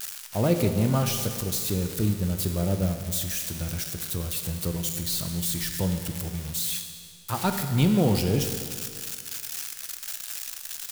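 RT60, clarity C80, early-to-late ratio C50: 2.1 s, 8.0 dB, 7.0 dB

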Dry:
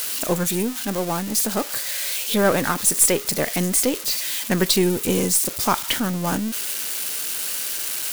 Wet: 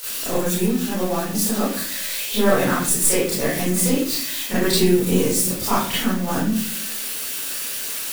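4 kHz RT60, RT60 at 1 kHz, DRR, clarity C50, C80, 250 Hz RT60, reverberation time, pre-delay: 0.35 s, 0.40 s, -10.5 dB, 0.5 dB, 6.0 dB, 0.90 s, 0.50 s, 27 ms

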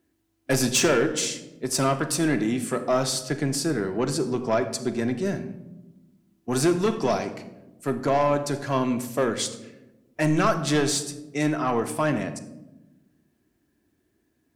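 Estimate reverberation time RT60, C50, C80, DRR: 1.0 s, 12.0 dB, 14.5 dB, 7.0 dB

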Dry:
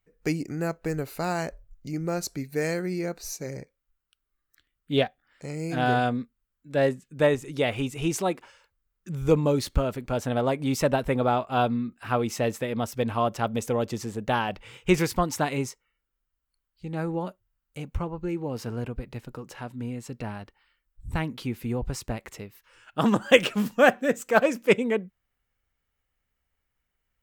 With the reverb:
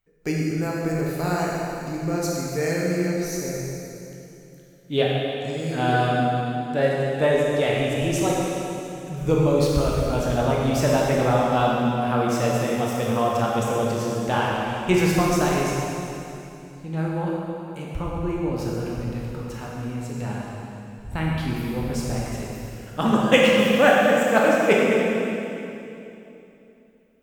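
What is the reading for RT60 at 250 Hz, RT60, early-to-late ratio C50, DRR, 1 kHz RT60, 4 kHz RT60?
3.4 s, 2.9 s, -2.0 dB, -4.0 dB, 2.8 s, 2.7 s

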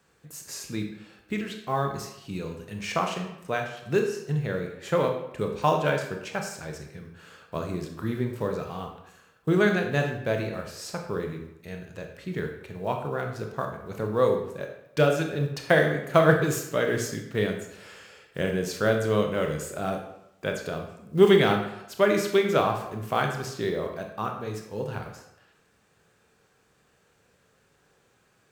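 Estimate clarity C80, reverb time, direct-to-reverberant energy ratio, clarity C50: 8.5 dB, 0.85 s, 3.0 dB, 6.5 dB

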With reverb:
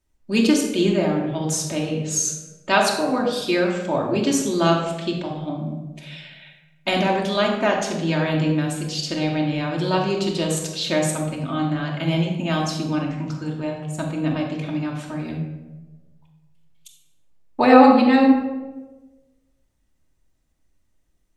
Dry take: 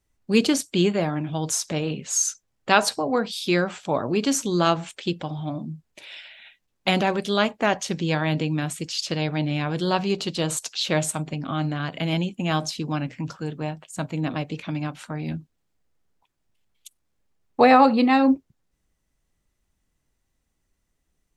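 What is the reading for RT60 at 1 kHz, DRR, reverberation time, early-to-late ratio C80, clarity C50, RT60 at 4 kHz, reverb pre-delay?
1.0 s, -0.5 dB, 1.2 s, 6.5 dB, 4.5 dB, 0.65 s, 3 ms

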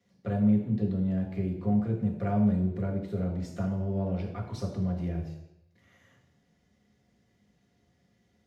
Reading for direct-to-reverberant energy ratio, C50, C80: -1.0 dB, 7.0 dB, 9.5 dB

